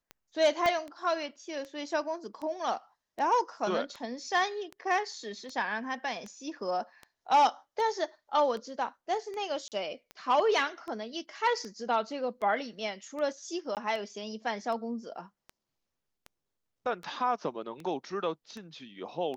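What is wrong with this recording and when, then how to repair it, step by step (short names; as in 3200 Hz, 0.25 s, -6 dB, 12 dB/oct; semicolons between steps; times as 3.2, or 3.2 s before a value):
tick 78 rpm -28 dBFS
0.66 pop -15 dBFS
9.68–9.72 gap 38 ms
13.75–13.77 gap 18 ms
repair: de-click; interpolate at 9.68, 38 ms; interpolate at 13.75, 18 ms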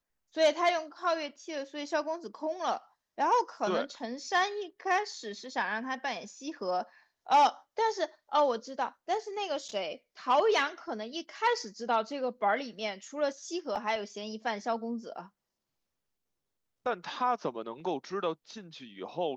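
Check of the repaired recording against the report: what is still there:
0.66 pop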